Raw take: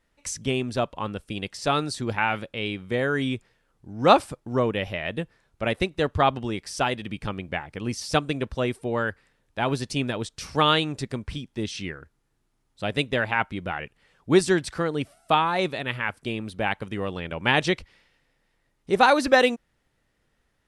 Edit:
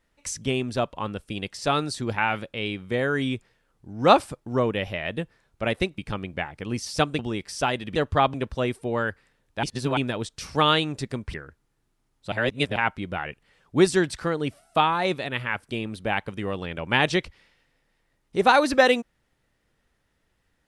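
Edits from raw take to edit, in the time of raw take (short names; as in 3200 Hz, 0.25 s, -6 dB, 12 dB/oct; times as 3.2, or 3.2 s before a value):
5.98–6.37 swap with 7.13–8.34
9.63–9.97 reverse
11.34–11.88 cut
12.86–13.3 reverse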